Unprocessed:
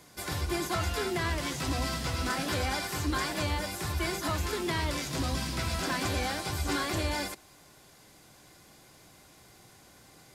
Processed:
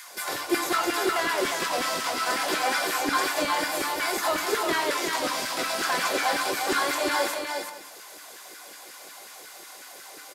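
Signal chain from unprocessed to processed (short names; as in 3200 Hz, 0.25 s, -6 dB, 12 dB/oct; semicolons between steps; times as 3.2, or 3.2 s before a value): HPF 82 Hz; high shelf 12000 Hz +6 dB; in parallel at -10.5 dB: soft clip -33.5 dBFS, distortion -9 dB; on the sum: LFO high-pass saw down 5.5 Hz 320–1700 Hz; tapped delay 0.355/0.551 s -4.5/-18 dB; on a send at -9.5 dB: reverb RT60 0.85 s, pre-delay 15 ms; on the sum: mismatched tape noise reduction encoder only; gain +2 dB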